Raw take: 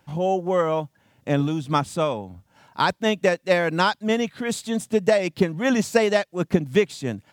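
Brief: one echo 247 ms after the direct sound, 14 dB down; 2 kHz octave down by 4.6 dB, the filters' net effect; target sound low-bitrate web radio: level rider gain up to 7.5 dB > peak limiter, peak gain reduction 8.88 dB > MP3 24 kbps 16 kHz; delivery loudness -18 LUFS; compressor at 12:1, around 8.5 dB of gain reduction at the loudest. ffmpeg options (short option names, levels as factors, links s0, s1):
-af "equalizer=f=2000:t=o:g=-6,acompressor=threshold=0.0794:ratio=12,aecho=1:1:247:0.2,dynaudnorm=m=2.37,alimiter=limit=0.119:level=0:latency=1,volume=4.22" -ar 16000 -c:a libmp3lame -b:a 24k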